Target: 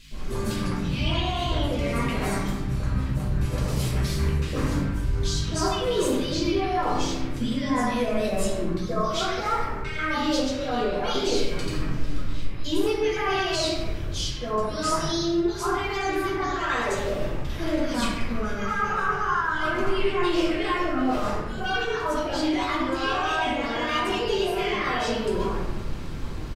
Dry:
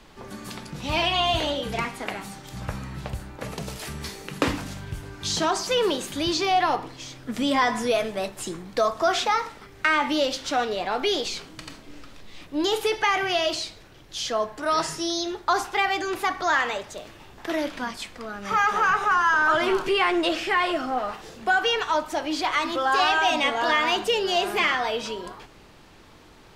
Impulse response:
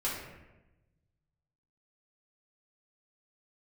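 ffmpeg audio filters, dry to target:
-filter_complex "[0:a]lowshelf=f=200:g=11,areverse,acompressor=threshold=0.0224:ratio=6,areverse,acrossover=split=690|2200[s0][s1][s2];[s0]adelay=110[s3];[s1]adelay=140[s4];[s3][s4][s2]amix=inputs=3:normalize=0,aeval=exprs='val(0)+0.002*(sin(2*PI*50*n/s)+sin(2*PI*2*50*n/s)/2+sin(2*PI*3*50*n/s)/3+sin(2*PI*4*50*n/s)/4+sin(2*PI*5*50*n/s)/5)':c=same[s5];[1:a]atrim=start_sample=2205[s6];[s5][s6]afir=irnorm=-1:irlink=0,volume=1.78"

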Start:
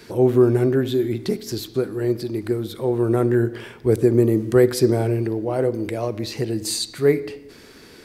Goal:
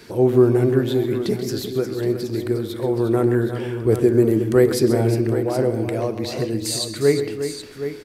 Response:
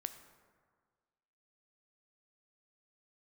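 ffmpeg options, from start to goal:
-af "aecho=1:1:132|357|771:0.251|0.316|0.299"

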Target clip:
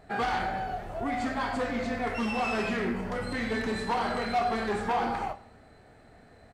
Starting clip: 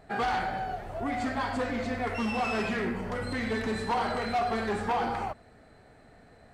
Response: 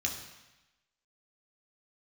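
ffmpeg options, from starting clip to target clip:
-filter_complex "[0:a]asplit=2[s0][s1];[s1]adelay=26,volume=0.266[s2];[s0][s2]amix=inputs=2:normalize=0,asplit=2[s3][s4];[1:a]atrim=start_sample=2205,adelay=28[s5];[s4][s5]afir=irnorm=-1:irlink=0,volume=0.126[s6];[s3][s6]amix=inputs=2:normalize=0"

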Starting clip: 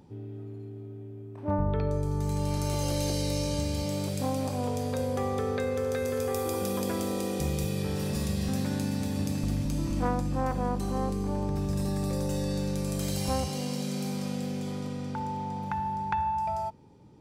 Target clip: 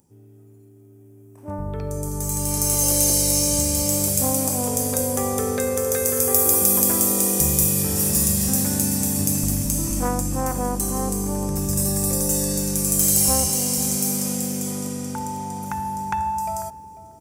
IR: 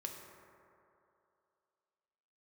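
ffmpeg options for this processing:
-filter_complex "[0:a]asplit=2[s0][s1];[s1]adelay=494,lowpass=f=840:p=1,volume=0.251,asplit=2[s2][s3];[s3]adelay=494,lowpass=f=840:p=1,volume=0.16[s4];[s0][s2][s4]amix=inputs=3:normalize=0,dynaudnorm=f=770:g=5:m=5.96,aexciter=amount=4.8:drive=9.8:freq=5900,volume=0.355"

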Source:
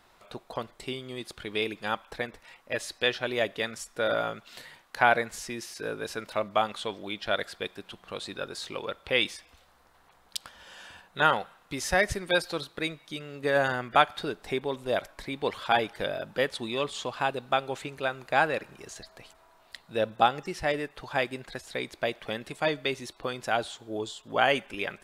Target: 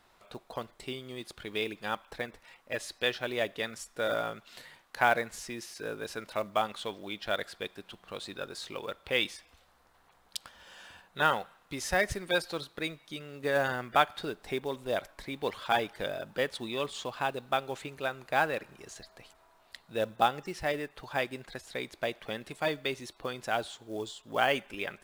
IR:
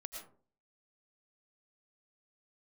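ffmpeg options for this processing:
-af "acrusher=bits=6:mode=log:mix=0:aa=0.000001,volume=0.668"

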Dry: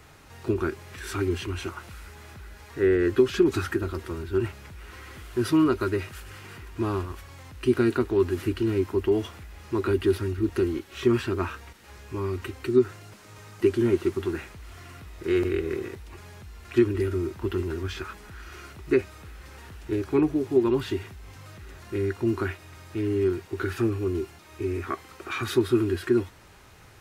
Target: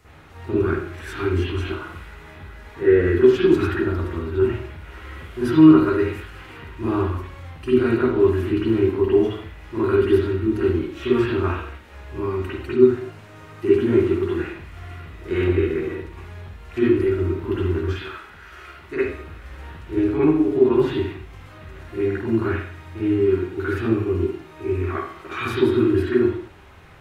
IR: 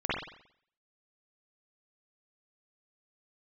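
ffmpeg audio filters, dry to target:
-filter_complex "[0:a]asettb=1/sr,asplit=3[s0][s1][s2];[s0]atrim=end=17.874[s3];[s1]atrim=start=17.87:end=19.01,asetpts=PTS-STARTPTS,afade=t=in:d=0.004:c=qsin,afade=t=out:st=1.136:d=0.004:c=qsin,lowshelf=f=390:g=-11[s4];[s2]atrim=start=19.006[s5];[s3][s4]acrossfade=d=0.004:c1=hsin:c2=qsin[s6];[s6][s5]acrossfade=d=0.004:c1=qsin:c2=hsin[s7];[1:a]atrim=start_sample=2205,afade=t=out:st=0.34:d=0.01,atrim=end_sample=15435[s8];[s7][s8]afir=irnorm=-1:irlink=0,volume=0.562"

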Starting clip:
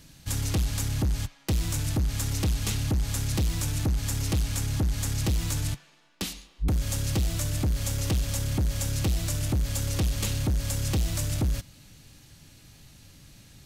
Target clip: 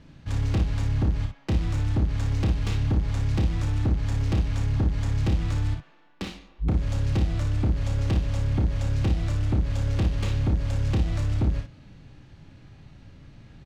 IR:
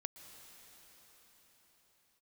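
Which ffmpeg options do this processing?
-filter_complex "[0:a]asplit=2[s0][s1];[s1]alimiter=level_in=2:limit=0.0631:level=0:latency=1,volume=0.501,volume=0.794[s2];[s0][s2]amix=inputs=2:normalize=0,adynamicsmooth=sensitivity=1.5:basefreq=2100,aecho=1:1:31|57:0.473|0.447,volume=0.841"

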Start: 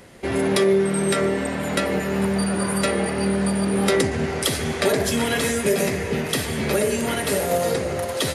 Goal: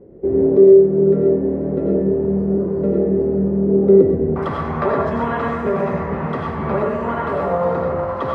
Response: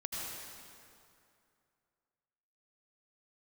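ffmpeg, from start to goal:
-filter_complex "[0:a]asetnsamples=n=441:p=0,asendcmd='4.36 lowpass f 1100',lowpass=f=410:t=q:w=3.8[s0];[1:a]atrim=start_sample=2205,atrim=end_sample=6174[s1];[s0][s1]afir=irnorm=-1:irlink=0,volume=1.26"

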